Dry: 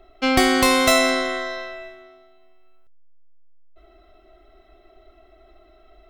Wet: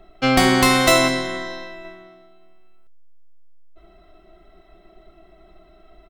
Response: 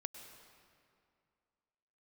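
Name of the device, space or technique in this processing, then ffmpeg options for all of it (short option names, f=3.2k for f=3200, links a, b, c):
octave pedal: -filter_complex "[0:a]asettb=1/sr,asplit=3[a][b][c];[a]atrim=end=1.084[d];[b]atrim=start=1.08:end=1.85,asetpts=PTS-STARTPTS,afade=t=in:d=0.004:c=qsin,afade=t=out:st=0.766:d=0.004:c=qsin,equalizer=f=1.1k:t=o:w=2.8:g=-5.5[e];[c]atrim=start=1.846[f];[d][e]acrossfade=d=0.004:c1=hsin:c2=qsin[g];[g][f]acrossfade=d=0.004:c1=qsin:c2=hsin,asplit=2[h][i];[i]asetrate=22050,aresample=44100,atempo=2,volume=-7dB[j];[h][j]amix=inputs=2:normalize=0,volume=1dB"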